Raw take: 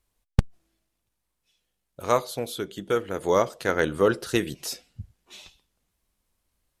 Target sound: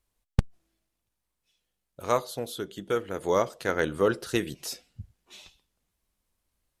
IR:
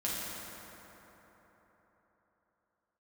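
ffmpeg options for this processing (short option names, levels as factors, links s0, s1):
-filter_complex "[0:a]asettb=1/sr,asplit=3[s0][s1][s2];[s0]atrim=end=2.174[s3];[s1]atrim=start=2.17:end=2.71,asetpts=PTS-STARTPTS,afade=t=in:d=0.004:c=qsin,afade=t=out:st=0.536:d=0.004:c=qsin,bandreject=f=2300:w=6.1[s4];[s2]atrim=start=2.706[s5];[s3][s4]acrossfade=d=0.004:c1=hsin:c2=qsin[s6];[s6][s5]acrossfade=d=0.004:c1=qsin:c2=hsin,volume=0.708"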